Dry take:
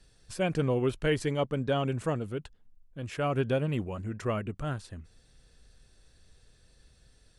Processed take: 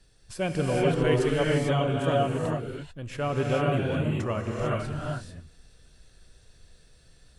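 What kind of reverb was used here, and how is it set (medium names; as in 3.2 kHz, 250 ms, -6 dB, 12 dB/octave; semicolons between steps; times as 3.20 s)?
gated-style reverb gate 470 ms rising, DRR -3 dB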